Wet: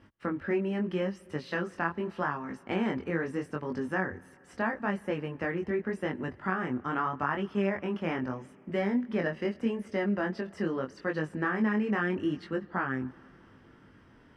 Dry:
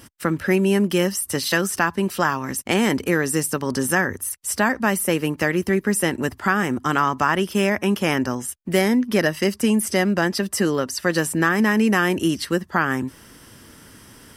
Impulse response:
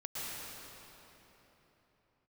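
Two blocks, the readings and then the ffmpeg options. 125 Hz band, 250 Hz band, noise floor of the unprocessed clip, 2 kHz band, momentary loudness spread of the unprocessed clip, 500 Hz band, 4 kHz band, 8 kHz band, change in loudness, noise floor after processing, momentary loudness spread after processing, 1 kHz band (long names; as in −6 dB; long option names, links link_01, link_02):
−10.5 dB, −10.5 dB, −47 dBFS, −12.0 dB, 5 LU, −10.0 dB, −19.0 dB, below −30 dB, −11.0 dB, −57 dBFS, 6 LU, −10.5 dB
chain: -filter_complex "[0:a]lowpass=2100,flanger=delay=19.5:depth=4.7:speed=0.8,asplit=2[link_01][link_02];[1:a]atrim=start_sample=2205[link_03];[link_02][link_03]afir=irnorm=-1:irlink=0,volume=-25dB[link_04];[link_01][link_04]amix=inputs=2:normalize=0,volume=-7.5dB"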